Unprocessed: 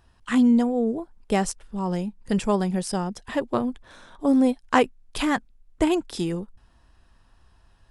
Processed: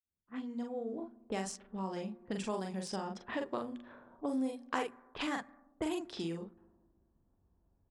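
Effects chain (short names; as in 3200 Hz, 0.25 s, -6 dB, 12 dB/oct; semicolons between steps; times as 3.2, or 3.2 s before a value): opening faded in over 1.60 s; doubler 42 ms -3.5 dB; low-pass opened by the level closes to 2100 Hz, open at -15 dBFS; compressor 3:1, threshold -29 dBFS, peak gain reduction 12.5 dB; HPF 190 Hz 6 dB/oct; reverb RT60 1.7 s, pre-delay 4 ms, DRR 19.5 dB; low-pass opened by the level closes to 320 Hz, open at -30.5 dBFS; de-esser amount 75%; high shelf 4600 Hz +5.5 dB; notches 60/120/180/240 Hz; gain -5.5 dB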